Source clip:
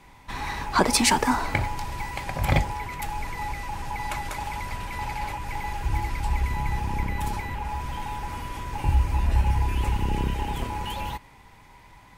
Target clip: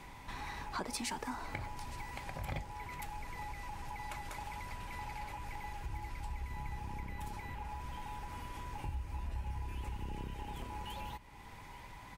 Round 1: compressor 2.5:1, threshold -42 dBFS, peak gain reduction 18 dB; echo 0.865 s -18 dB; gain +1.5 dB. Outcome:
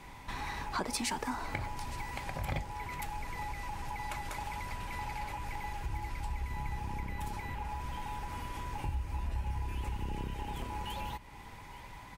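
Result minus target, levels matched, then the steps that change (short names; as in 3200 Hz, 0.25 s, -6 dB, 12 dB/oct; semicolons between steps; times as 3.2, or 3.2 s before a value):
compressor: peak gain reduction -4.5 dB
change: compressor 2.5:1, threshold -49.5 dBFS, peak gain reduction 22.5 dB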